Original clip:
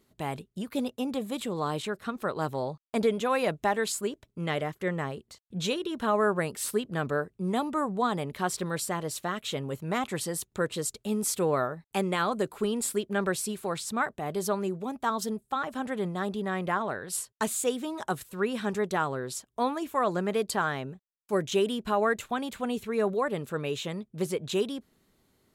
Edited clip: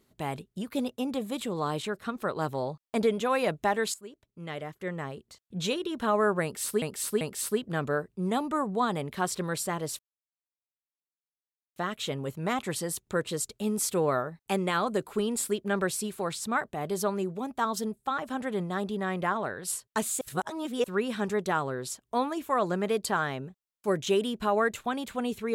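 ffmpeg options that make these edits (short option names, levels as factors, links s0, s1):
-filter_complex "[0:a]asplit=7[s0][s1][s2][s3][s4][s5][s6];[s0]atrim=end=3.94,asetpts=PTS-STARTPTS,afade=t=out:st=3.936:d=0.004:c=hsin:silence=0.149624[s7];[s1]atrim=start=3.94:end=6.822,asetpts=PTS-STARTPTS,afade=t=in:d=1.81:silence=0.149624[s8];[s2]atrim=start=6.428:end=6.822[s9];[s3]atrim=start=6.428:end=9.21,asetpts=PTS-STARTPTS,afade=t=out:st=2.778:d=0.004:c=hsin,apad=pad_dur=1.77[s10];[s4]atrim=start=9.21:end=17.662,asetpts=PTS-STARTPTS,afade=t=in:d=0.004:c=hsin[s11];[s5]atrim=start=17.658:end=18.292,asetpts=PTS-STARTPTS,areverse[s12];[s6]atrim=start=18.288[s13];[s7][s8]concat=n=2:v=0:a=1[s14];[s14][s9]acrossfade=d=0.004:c1=hsin:c2=hsin[s15];[s10][s11]concat=n=2:v=0:a=1[s16];[s15][s16]acrossfade=d=0.004:c1=hsin:c2=hsin[s17];[s17][s12]acrossfade=d=0.004:c1=hsin:c2=hsin[s18];[s18][s13]acrossfade=d=0.004:c1=hsin:c2=hsin"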